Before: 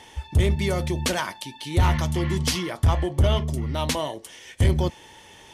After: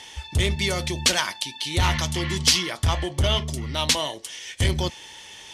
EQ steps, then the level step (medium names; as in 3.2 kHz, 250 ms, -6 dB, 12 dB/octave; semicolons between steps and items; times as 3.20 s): peaking EQ 4.7 kHz +13 dB 3 oct; -3.5 dB